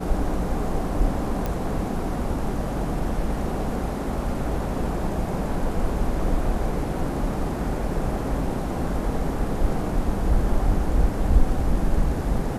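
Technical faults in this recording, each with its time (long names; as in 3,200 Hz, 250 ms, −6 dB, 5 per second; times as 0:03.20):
0:01.46: click −14 dBFS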